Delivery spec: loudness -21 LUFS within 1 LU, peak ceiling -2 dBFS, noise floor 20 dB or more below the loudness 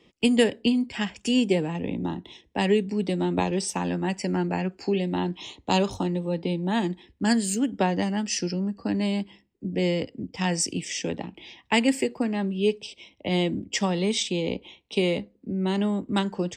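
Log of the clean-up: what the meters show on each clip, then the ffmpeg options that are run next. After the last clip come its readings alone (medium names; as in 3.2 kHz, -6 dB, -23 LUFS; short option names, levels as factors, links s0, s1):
loudness -26.5 LUFS; peak level -9.0 dBFS; loudness target -21.0 LUFS
-> -af "volume=1.88"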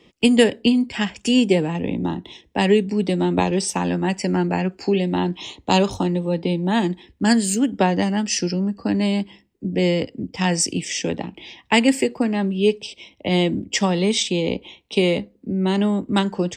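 loudness -21.0 LUFS; peak level -3.5 dBFS; noise floor -59 dBFS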